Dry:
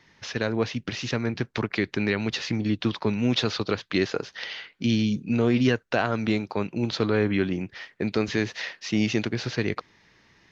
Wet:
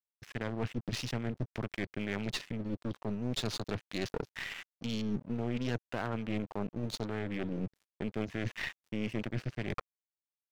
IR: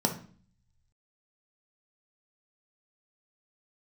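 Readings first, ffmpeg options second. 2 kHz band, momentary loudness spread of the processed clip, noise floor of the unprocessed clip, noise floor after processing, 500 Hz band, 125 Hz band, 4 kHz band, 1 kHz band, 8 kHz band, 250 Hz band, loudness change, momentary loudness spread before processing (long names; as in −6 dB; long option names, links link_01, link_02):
−11.0 dB, 4 LU, −62 dBFS, below −85 dBFS, −12.0 dB, −8.5 dB, −10.5 dB, −10.0 dB, can't be measured, −11.5 dB, −11.0 dB, 8 LU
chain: -af "afwtdn=0.0178,bass=frequency=250:gain=6,treble=frequency=4000:gain=10,areverse,acompressor=threshold=-28dB:ratio=12,areverse,aeval=exprs='sgn(val(0))*max(abs(val(0))-0.00473,0)':channel_layout=same,aeval=exprs='0.15*(cos(1*acos(clip(val(0)/0.15,-1,1)))-cos(1*PI/2))+0.0376*(cos(4*acos(clip(val(0)/0.15,-1,1)))-cos(4*PI/2))':channel_layout=same,asoftclip=type=tanh:threshold=-20dB,adynamicequalizer=threshold=0.00251:dfrequency=4500:dqfactor=0.7:tfrequency=4500:tqfactor=0.7:attack=5:release=100:ratio=0.375:range=2.5:mode=cutabove:tftype=highshelf,volume=-1dB"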